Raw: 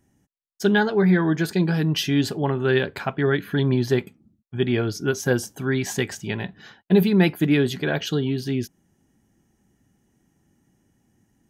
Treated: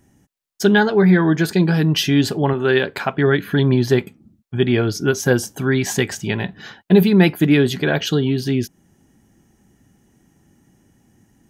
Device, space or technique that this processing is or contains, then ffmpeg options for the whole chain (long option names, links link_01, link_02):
parallel compression: -filter_complex "[0:a]asettb=1/sr,asplit=3[link_01][link_02][link_03];[link_01]atrim=end=2.534[link_04];[link_02]atrim=start=2.53:end=3.14,asetpts=PTS-STARTPTS,afade=type=in:duration=0.004:curve=qsin,afade=type=out:start_time=0.606:duration=0.004:curve=qsin,equalizer=frequency=69:width=0.52:gain=-9[link_05];[link_03]atrim=start=3.136[link_06];[link_04][link_05]acrossfade=duration=0.004:curve1=hsin:curve2=qsin[link_07];[link_07][link_06]acrossfade=duration=0.004:curve1=qsin:curve2=hsin,asplit=2[link_08][link_09];[link_09]acompressor=threshold=-33dB:ratio=6,volume=-3.5dB[link_10];[link_08][link_10]amix=inputs=2:normalize=0,volume=4dB"